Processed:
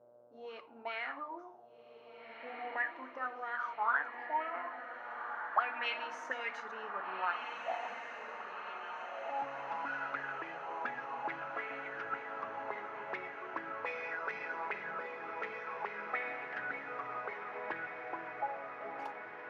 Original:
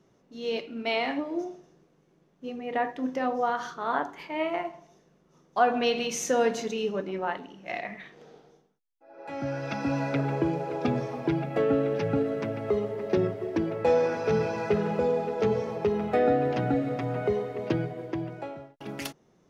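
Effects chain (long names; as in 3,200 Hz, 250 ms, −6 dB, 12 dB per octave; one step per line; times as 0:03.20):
hum with harmonics 120 Hz, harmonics 13, −56 dBFS −5 dB per octave
envelope filter 560–2,200 Hz, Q 9.2, up, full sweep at −21 dBFS
feedback delay with all-pass diffusion 1,626 ms, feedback 64%, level −6.5 dB
level +7.5 dB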